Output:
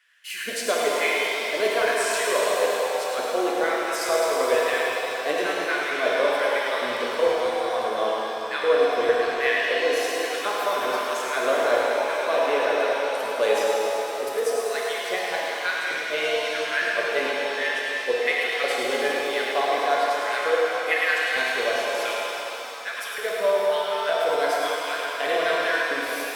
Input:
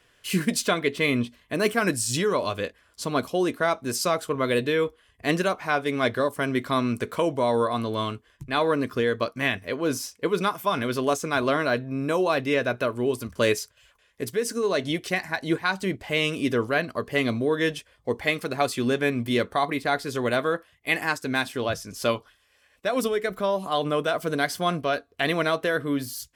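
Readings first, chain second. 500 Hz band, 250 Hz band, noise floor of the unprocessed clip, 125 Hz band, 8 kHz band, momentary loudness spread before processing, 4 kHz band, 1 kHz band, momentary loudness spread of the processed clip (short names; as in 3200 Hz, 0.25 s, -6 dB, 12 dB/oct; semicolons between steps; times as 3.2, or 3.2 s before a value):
+3.0 dB, -10.0 dB, -63 dBFS, under -20 dB, +1.0 dB, 5 LU, +3.0 dB, +3.0 dB, 5 LU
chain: LFO high-pass square 1.1 Hz 500–1700 Hz; split-band echo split 400 Hz, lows 0.187 s, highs 0.106 s, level -6 dB; shimmer reverb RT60 3.5 s, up +7 st, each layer -8 dB, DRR -3 dB; gain -6.5 dB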